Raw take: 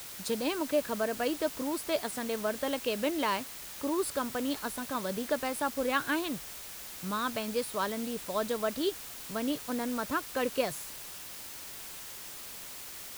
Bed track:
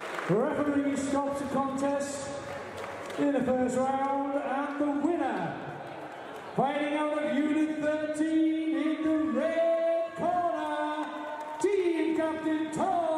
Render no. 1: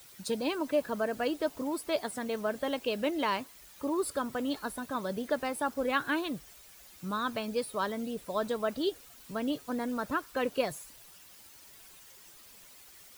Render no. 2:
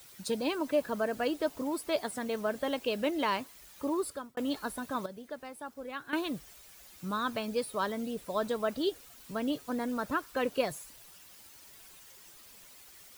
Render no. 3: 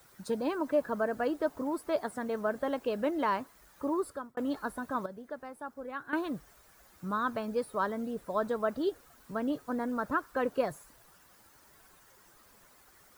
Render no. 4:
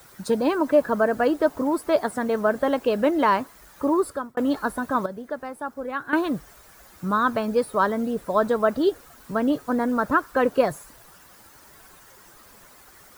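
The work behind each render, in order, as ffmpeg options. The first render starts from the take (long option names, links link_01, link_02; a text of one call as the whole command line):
ffmpeg -i in.wav -af "afftdn=noise_reduction=12:noise_floor=-44" out.wav
ffmpeg -i in.wav -filter_complex "[0:a]asplit=4[link_01][link_02][link_03][link_04];[link_01]atrim=end=4.37,asetpts=PTS-STARTPTS,afade=type=out:start_time=3.93:duration=0.44[link_05];[link_02]atrim=start=4.37:end=5.062,asetpts=PTS-STARTPTS,afade=type=in:duration=0.004:curve=hsin[link_06];[link_03]atrim=start=5.058:end=6.132,asetpts=PTS-STARTPTS,volume=-11dB[link_07];[link_04]atrim=start=6.128[link_08];[link_05][link_06]concat=n=2:v=0:a=1[link_09];[link_09][link_07]acrossfade=duration=0.004:curve1=hsin:curve2=hsin[link_10];[link_10][link_08]acrossfade=duration=0.004:curve1=hsin:curve2=hsin" out.wav
ffmpeg -i in.wav -af "highshelf=frequency=2000:width_type=q:width=1.5:gain=-8" out.wav
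ffmpeg -i in.wav -af "volume=10dB" out.wav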